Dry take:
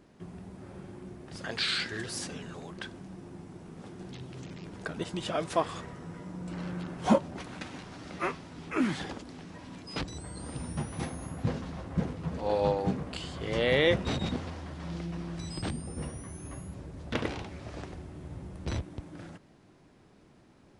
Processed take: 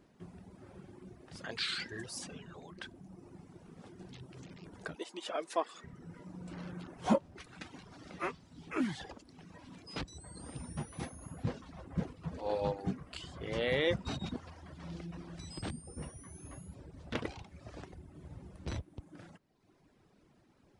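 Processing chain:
0:04.95–0:05.84: high-pass filter 290 Hz 24 dB per octave
reverb reduction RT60 1 s
level −5 dB

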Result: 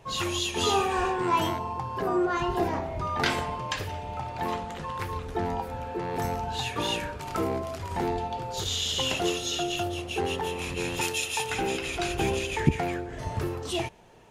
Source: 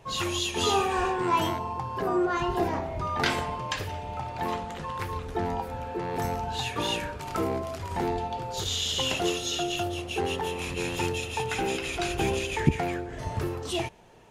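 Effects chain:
0:11.01–0:11.50: spectral tilt +3 dB per octave

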